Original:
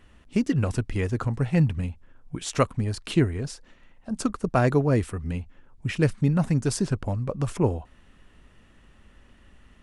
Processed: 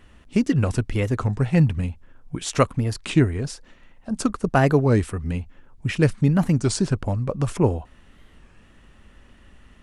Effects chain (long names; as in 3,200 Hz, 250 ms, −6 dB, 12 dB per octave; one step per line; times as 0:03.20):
wow of a warped record 33 1/3 rpm, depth 160 cents
level +3.5 dB